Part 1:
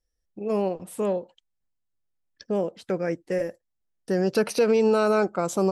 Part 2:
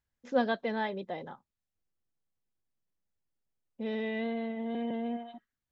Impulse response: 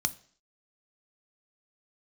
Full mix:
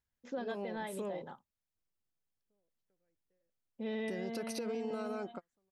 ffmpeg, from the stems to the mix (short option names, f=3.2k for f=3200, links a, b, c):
-filter_complex "[0:a]acompressor=threshold=-25dB:ratio=6,volume=-6.5dB[a];[1:a]volume=-3.5dB,asplit=2[b][c];[c]apad=whole_len=256477[d];[a][d]sidechaingate=range=-47dB:threshold=-49dB:ratio=16:detection=peak[e];[e][b]amix=inputs=2:normalize=0,alimiter=level_in=6dB:limit=-24dB:level=0:latency=1:release=172,volume=-6dB"